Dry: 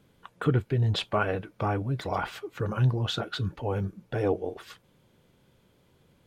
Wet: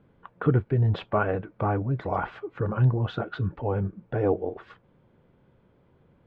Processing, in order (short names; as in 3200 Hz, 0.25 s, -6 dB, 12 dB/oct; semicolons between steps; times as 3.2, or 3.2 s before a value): LPF 1600 Hz 12 dB/oct; gain +2.5 dB